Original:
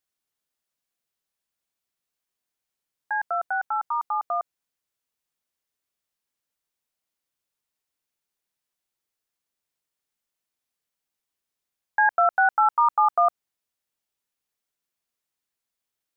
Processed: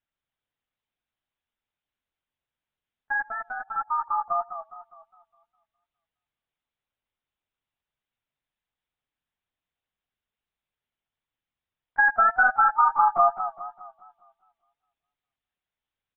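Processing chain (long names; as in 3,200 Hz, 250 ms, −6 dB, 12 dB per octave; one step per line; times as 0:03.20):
0:03.30–0:03.77: compressor whose output falls as the input rises −33 dBFS, ratio −1
slap from a distant wall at 21 metres, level −25 dB
linear-prediction vocoder at 8 kHz pitch kept
feedback echo with a swinging delay time 205 ms, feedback 43%, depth 128 cents, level −11 dB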